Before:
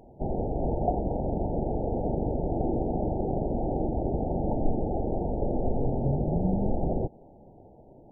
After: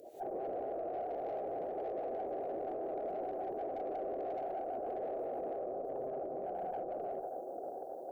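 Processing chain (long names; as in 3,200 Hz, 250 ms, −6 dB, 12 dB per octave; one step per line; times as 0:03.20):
time-frequency cells dropped at random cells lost 22%
compressor whose output falls as the input rises −30 dBFS, ratio −0.5
first difference
delay with a band-pass on its return 584 ms, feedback 75%, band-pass 440 Hz, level −14 dB
reverb whose tail is shaped and stops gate 210 ms rising, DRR −2 dB
tube saturation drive 52 dB, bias 0.55
flat-topped bell 510 Hz +14 dB
notch filter 880 Hz, Q 5.4
brickwall limiter −44.5 dBFS, peak gain reduction 9 dB
level +12 dB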